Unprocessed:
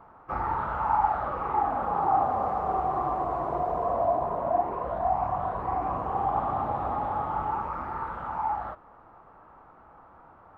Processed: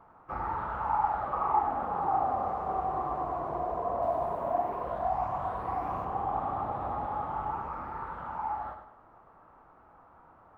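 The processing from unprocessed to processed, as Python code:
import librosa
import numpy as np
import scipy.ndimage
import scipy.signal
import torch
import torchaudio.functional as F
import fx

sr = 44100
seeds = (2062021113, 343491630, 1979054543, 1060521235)

y = fx.spec_box(x, sr, start_s=1.33, length_s=0.26, low_hz=590.0, high_hz=1300.0, gain_db=7)
y = fx.high_shelf(y, sr, hz=2800.0, db=9.5, at=(4.02, 6.05))
y = fx.echo_feedback(y, sr, ms=99, feedback_pct=37, wet_db=-8)
y = y * librosa.db_to_amplitude(-5.0)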